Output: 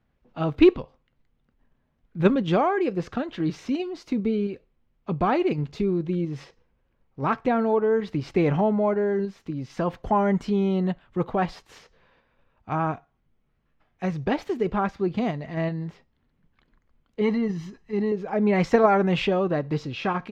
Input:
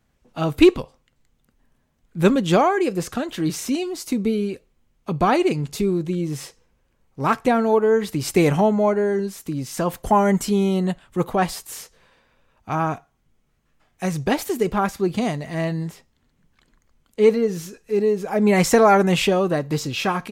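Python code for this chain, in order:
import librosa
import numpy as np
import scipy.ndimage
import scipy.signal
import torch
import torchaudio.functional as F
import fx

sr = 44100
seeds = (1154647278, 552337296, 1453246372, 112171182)

p1 = fx.high_shelf(x, sr, hz=5600.0, db=-5.5, at=(8.17, 8.84))
p2 = fx.comb(p1, sr, ms=1.0, depth=0.74, at=(17.21, 18.12))
p3 = fx.level_steps(p2, sr, step_db=12)
p4 = p2 + (p3 * 10.0 ** (-1.0 / 20.0))
p5 = fx.air_absorb(p4, sr, metres=230.0)
y = p5 * 10.0 ** (-6.5 / 20.0)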